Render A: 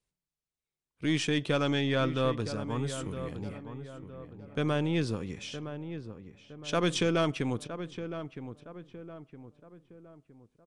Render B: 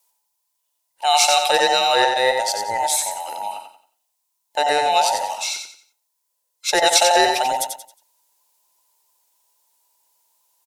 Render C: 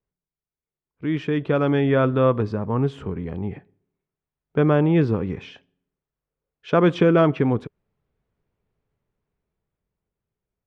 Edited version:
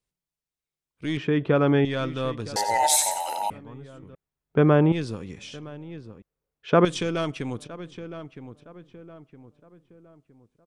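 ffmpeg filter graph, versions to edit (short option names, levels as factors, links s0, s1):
-filter_complex "[2:a]asplit=3[s0][s1][s2];[0:a]asplit=5[s3][s4][s5][s6][s7];[s3]atrim=end=1.172[s8];[s0]atrim=start=1.168:end=1.852[s9];[s4]atrim=start=1.848:end=2.562[s10];[1:a]atrim=start=2.558:end=3.502[s11];[s5]atrim=start=3.498:end=4.152[s12];[s1]atrim=start=4.148:end=4.922[s13];[s6]atrim=start=4.918:end=6.222[s14];[s2]atrim=start=6.218:end=6.852[s15];[s7]atrim=start=6.848[s16];[s8][s9]acrossfade=d=0.004:c1=hsin:c2=hsin[s17];[s17][s10]acrossfade=d=0.004:c1=hsin:c2=hsin[s18];[s18][s11]acrossfade=d=0.004:c1=hsin:c2=hsin[s19];[s19][s12]acrossfade=d=0.004:c1=hsin:c2=hsin[s20];[s20][s13]acrossfade=d=0.004:c1=hsin:c2=hsin[s21];[s21][s14]acrossfade=d=0.004:c1=hsin:c2=hsin[s22];[s22][s15]acrossfade=d=0.004:c1=hsin:c2=hsin[s23];[s23][s16]acrossfade=d=0.004:c1=hsin:c2=hsin"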